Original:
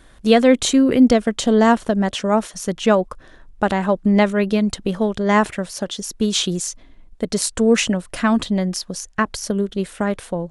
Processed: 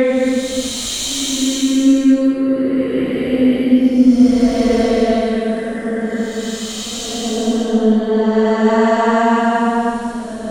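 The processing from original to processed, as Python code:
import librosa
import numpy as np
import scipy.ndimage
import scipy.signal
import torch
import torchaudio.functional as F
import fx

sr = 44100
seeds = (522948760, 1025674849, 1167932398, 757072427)

y = fx.tracing_dist(x, sr, depth_ms=0.03)
y = fx.paulstretch(y, sr, seeds[0], factor=7.9, window_s=0.25, from_s=0.52)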